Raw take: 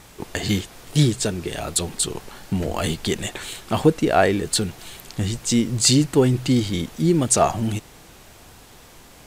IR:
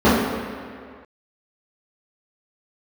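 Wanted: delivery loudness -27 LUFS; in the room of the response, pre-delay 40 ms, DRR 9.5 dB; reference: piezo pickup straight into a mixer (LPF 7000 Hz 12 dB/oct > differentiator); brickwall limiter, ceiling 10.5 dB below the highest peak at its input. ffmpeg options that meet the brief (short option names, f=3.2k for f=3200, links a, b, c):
-filter_complex "[0:a]alimiter=limit=-13dB:level=0:latency=1,asplit=2[a][b];[1:a]atrim=start_sample=2205,adelay=40[c];[b][c]afir=irnorm=-1:irlink=0,volume=-36.5dB[d];[a][d]amix=inputs=2:normalize=0,lowpass=7k,aderivative,volume=8.5dB"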